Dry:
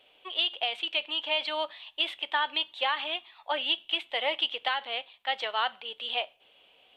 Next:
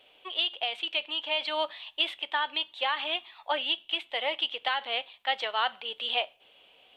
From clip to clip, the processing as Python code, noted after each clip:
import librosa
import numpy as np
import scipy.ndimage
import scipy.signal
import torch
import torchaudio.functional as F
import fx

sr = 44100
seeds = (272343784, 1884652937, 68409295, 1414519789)

y = fx.rider(x, sr, range_db=10, speed_s=0.5)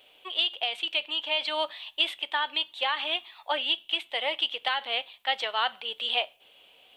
y = fx.high_shelf(x, sr, hz=6300.0, db=11.5)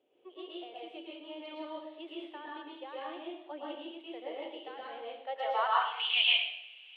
y = fx.filter_sweep_bandpass(x, sr, from_hz=330.0, to_hz=2600.0, start_s=5.09, end_s=6.05, q=3.3)
y = fx.rev_plate(y, sr, seeds[0], rt60_s=0.72, hf_ratio=0.95, predelay_ms=100, drr_db=-5.5)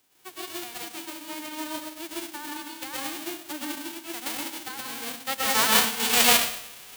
y = fx.envelope_flatten(x, sr, power=0.1)
y = y * librosa.db_to_amplitude(8.0)